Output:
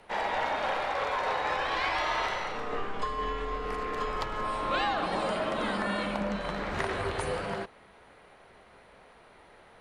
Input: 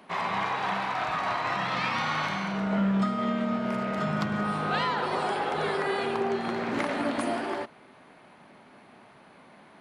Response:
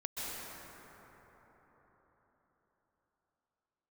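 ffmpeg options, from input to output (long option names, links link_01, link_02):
-af "afreqshift=-190,lowshelf=frequency=230:gain=-8.5"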